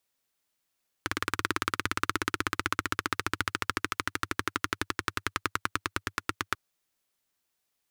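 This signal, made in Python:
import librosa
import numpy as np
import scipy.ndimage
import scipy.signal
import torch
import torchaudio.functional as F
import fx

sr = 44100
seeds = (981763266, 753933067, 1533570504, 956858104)

y = fx.engine_single_rev(sr, seeds[0], length_s=5.49, rpm=2200, resonances_hz=(99.0, 310.0, 1300.0), end_rpm=1000)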